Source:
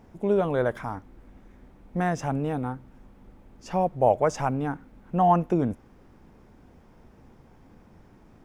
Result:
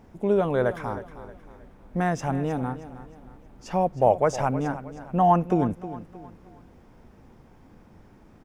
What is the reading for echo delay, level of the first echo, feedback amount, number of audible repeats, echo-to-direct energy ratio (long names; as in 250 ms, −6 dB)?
314 ms, −14.0 dB, 39%, 3, −13.5 dB